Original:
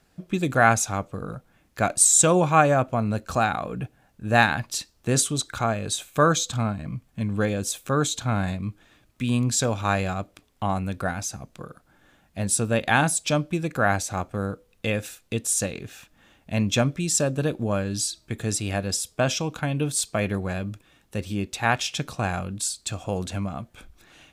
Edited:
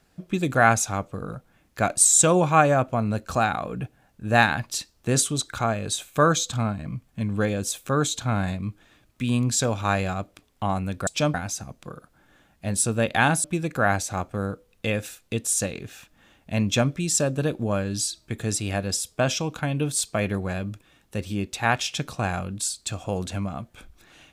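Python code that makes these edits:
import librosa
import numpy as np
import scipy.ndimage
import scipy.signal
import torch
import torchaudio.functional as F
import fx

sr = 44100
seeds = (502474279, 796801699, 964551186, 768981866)

y = fx.edit(x, sr, fx.move(start_s=13.17, length_s=0.27, to_s=11.07), tone=tone)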